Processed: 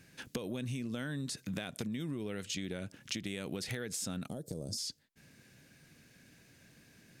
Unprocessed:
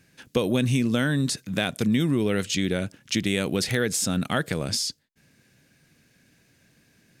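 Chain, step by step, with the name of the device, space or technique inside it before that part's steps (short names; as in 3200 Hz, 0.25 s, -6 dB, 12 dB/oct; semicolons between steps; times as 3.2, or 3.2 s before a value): serial compression, peaks first (compressor, threshold -30 dBFS, peak gain reduction 12 dB; compressor 2:1, threshold -39 dBFS, peak gain reduction 7 dB); 4.28–4.78 EQ curve 560 Hz 0 dB, 1800 Hz -28 dB, 2600 Hz -26 dB, 5300 Hz +1 dB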